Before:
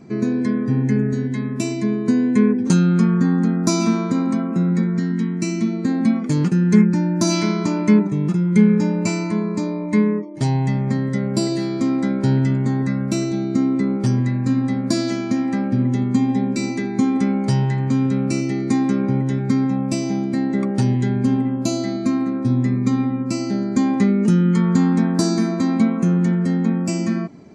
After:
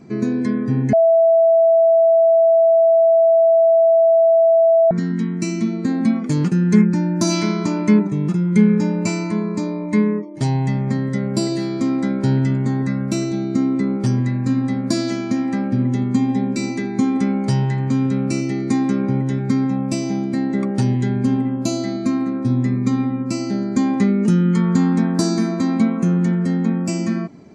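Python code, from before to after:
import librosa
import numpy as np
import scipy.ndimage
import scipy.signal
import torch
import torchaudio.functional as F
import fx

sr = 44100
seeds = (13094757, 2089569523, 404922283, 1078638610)

y = fx.edit(x, sr, fx.bleep(start_s=0.93, length_s=3.98, hz=660.0, db=-9.5), tone=tone)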